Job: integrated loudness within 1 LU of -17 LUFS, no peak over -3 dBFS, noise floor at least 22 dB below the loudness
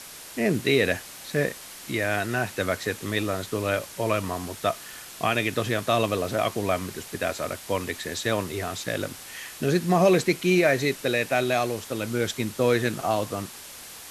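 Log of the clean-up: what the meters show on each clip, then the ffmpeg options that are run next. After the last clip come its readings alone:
noise floor -43 dBFS; noise floor target -48 dBFS; loudness -26.0 LUFS; peak -8.5 dBFS; loudness target -17.0 LUFS
-> -af "afftdn=nr=6:nf=-43"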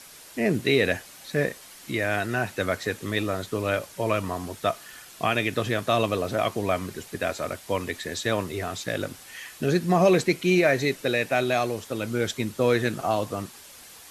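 noise floor -47 dBFS; noise floor target -48 dBFS
-> -af "afftdn=nr=6:nf=-47"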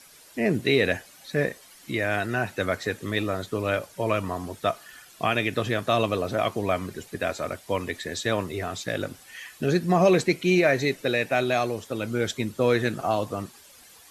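noise floor -52 dBFS; loudness -26.0 LUFS; peak -8.5 dBFS; loudness target -17.0 LUFS
-> -af "volume=9dB,alimiter=limit=-3dB:level=0:latency=1"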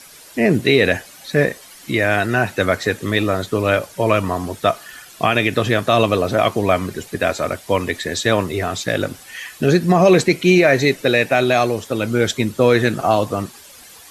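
loudness -17.5 LUFS; peak -3.0 dBFS; noise floor -43 dBFS

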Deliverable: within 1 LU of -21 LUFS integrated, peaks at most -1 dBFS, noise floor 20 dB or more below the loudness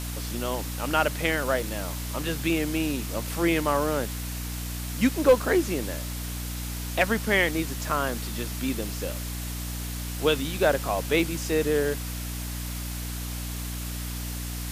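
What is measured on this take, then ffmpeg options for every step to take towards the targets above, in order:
hum 60 Hz; harmonics up to 300 Hz; hum level -31 dBFS; noise floor -33 dBFS; noise floor target -48 dBFS; loudness -27.5 LUFS; peak -8.5 dBFS; loudness target -21.0 LUFS
-> -af "bandreject=f=60:t=h:w=4,bandreject=f=120:t=h:w=4,bandreject=f=180:t=h:w=4,bandreject=f=240:t=h:w=4,bandreject=f=300:t=h:w=4"
-af "afftdn=nr=15:nf=-33"
-af "volume=6.5dB"

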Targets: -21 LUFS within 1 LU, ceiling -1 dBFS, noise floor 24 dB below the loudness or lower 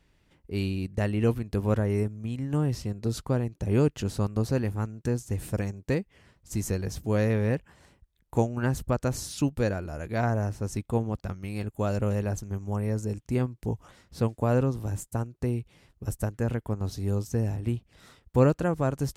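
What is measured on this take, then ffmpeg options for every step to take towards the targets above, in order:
loudness -29.0 LUFS; peak -7.0 dBFS; loudness target -21.0 LUFS
-> -af "volume=8dB,alimiter=limit=-1dB:level=0:latency=1"

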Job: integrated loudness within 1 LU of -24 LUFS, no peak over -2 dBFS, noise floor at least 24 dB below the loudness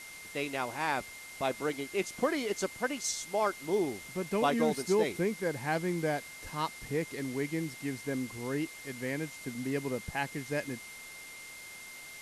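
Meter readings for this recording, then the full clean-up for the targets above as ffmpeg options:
steady tone 2100 Hz; tone level -47 dBFS; noise floor -47 dBFS; noise floor target -58 dBFS; loudness -33.5 LUFS; peak -14.5 dBFS; loudness target -24.0 LUFS
-> -af "bandreject=f=2.1k:w=30"
-af "afftdn=nr=11:nf=-47"
-af "volume=9.5dB"

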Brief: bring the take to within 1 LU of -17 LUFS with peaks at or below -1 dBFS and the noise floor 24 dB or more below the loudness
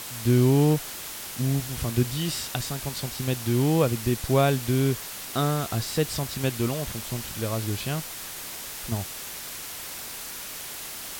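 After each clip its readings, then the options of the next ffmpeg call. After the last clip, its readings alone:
noise floor -37 dBFS; noise floor target -51 dBFS; loudness -27.0 LUFS; peak -7.5 dBFS; loudness target -17.0 LUFS
-> -af "afftdn=nr=14:nf=-37"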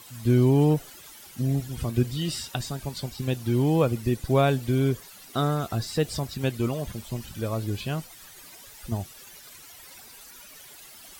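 noise floor -48 dBFS; noise floor target -51 dBFS
-> -af "afftdn=nr=6:nf=-48"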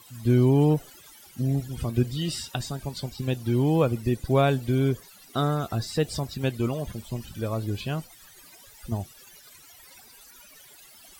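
noise floor -51 dBFS; loudness -26.5 LUFS; peak -8.0 dBFS; loudness target -17.0 LUFS
-> -af "volume=9.5dB,alimiter=limit=-1dB:level=0:latency=1"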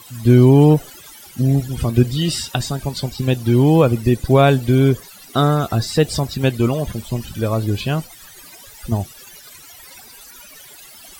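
loudness -17.0 LUFS; peak -1.0 dBFS; noise floor -42 dBFS

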